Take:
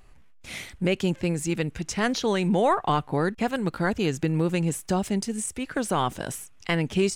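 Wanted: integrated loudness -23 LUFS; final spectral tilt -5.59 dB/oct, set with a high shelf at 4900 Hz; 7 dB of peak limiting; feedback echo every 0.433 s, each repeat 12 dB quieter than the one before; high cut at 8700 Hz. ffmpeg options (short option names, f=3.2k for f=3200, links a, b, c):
-af "lowpass=8.7k,highshelf=f=4.9k:g=-4.5,alimiter=limit=-19dB:level=0:latency=1,aecho=1:1:433|866|1299:0.251|0.0628|0.0157,volume=7dB"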